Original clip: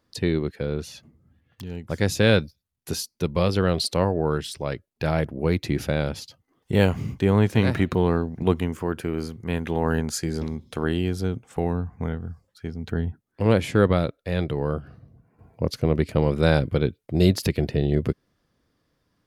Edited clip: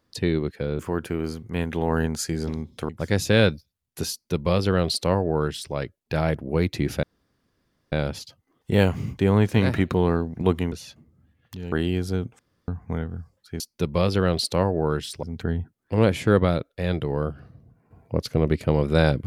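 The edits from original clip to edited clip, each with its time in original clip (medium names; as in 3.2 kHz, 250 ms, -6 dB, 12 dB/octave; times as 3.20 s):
0.79–1.79 s: swap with 8.73–10.83 s
3.01–4.64 s: copy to 12.71 s
5.93 s: insert room tone 0.89 s
11.50–11.79 s: room tone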